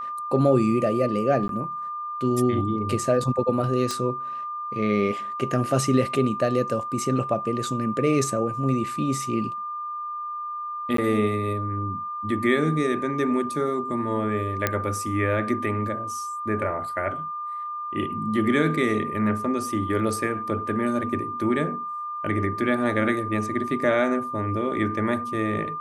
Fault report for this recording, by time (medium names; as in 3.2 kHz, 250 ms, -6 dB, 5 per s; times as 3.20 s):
whine 1.2 kHz -29 dBFS
1.48–1.49 s: dropout 12 ms
3.91 s: pop -13 dBFS
10.97–10.98 s: dropout 13 ms
14.67 s: pop -7 dBFS